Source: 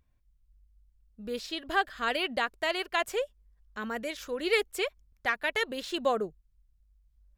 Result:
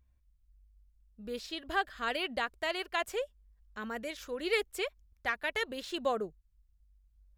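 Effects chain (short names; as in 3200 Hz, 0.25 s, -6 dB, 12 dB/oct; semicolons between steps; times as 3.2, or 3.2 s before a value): bell 61 Hz +12 dB 0.4 oct; gain -4 dB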